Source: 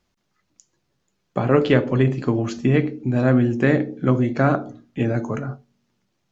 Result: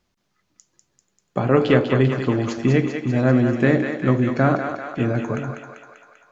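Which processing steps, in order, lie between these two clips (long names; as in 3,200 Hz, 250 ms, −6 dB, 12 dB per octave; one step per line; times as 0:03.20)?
feedback echo with a high-pass in the loop 196 ms, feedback 67%, high-pass 510 Hz, level −5.5 dB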